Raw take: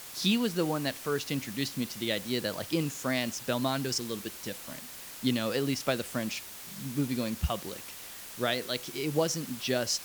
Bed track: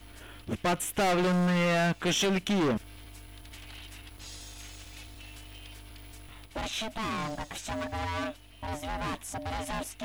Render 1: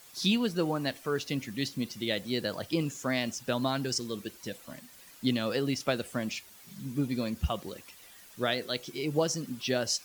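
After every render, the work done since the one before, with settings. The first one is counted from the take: denoiser 11 dB, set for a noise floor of -45 dBFS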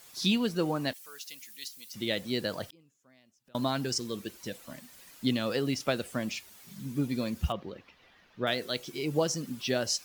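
0.93–1.94 differentiator; 2.66–3.55 flipped gate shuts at -35 dBFS, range -32 dB; 7.52–8.47 air absorption 280 m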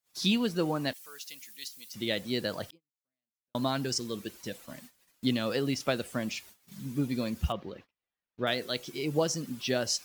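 gate -50 dBFS, range -34 dB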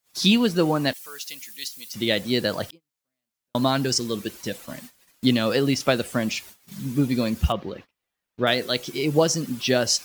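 gain +8.5 dB

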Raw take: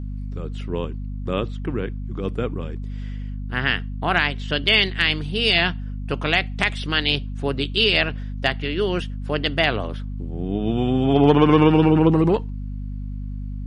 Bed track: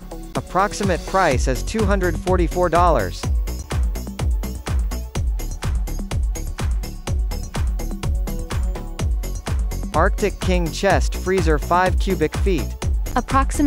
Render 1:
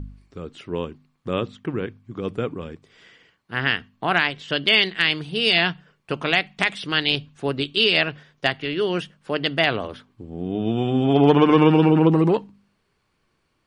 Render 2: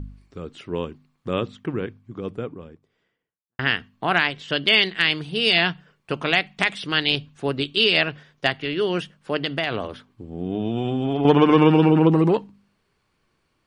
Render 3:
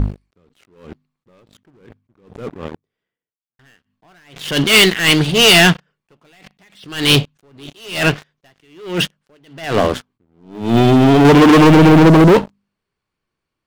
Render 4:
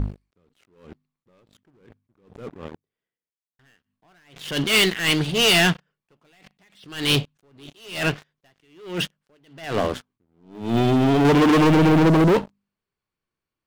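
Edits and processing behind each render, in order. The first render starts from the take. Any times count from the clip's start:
de-hum 50 Hz, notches 5
1.57–3.59 studio fade out; 9.38–11.25 compressor, threshold -19 dBFS
sample leveller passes 5; attack slew limiter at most 110 dB/s
gain -8 dB

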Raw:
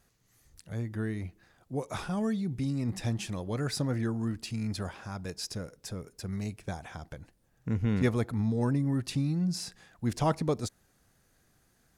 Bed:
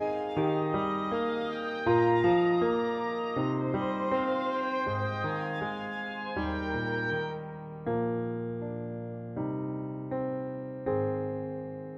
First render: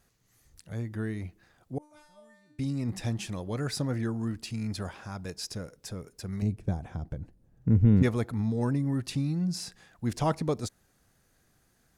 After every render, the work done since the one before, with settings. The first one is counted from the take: 1.78–2.59 resonator 300 Hz, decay 0.66 s, mix 100%; 6.42–8.03 tilt shelf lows +9.5 dB, about 640 Hz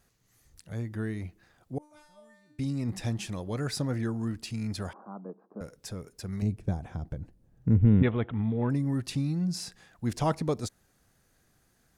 4.93–5.61 Chebyshev band-pass 190–1200 Hz, order 4; 7.75–8.7 careless resampling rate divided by 6×, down none, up filtered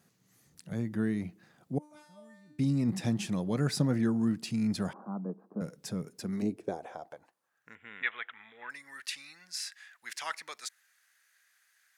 high-pass sweep 170 Hz -> 1800 Hz, 6.09–7.75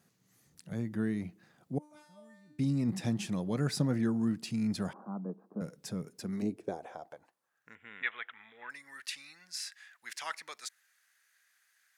gain -2 dB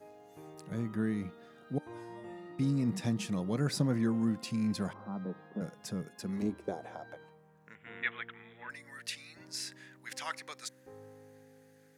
add bed -23 dB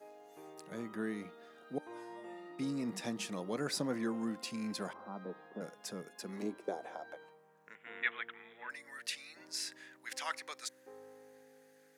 HPF 330 Hz 12 dB/oct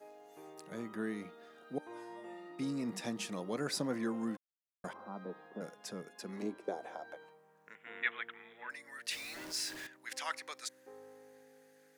4.37–4.84 mute; 5.76–6.77 high shelf 9100 Hz -6 dB; 9.11–9.87 zero-crossing step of -43 dBFS

